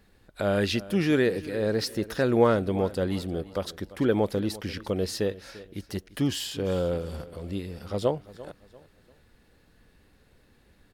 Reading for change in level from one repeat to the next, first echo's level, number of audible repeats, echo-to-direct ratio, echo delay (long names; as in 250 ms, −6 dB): −9.5 dB, −18.0 dB, 2, −17.5 dB, 344 ms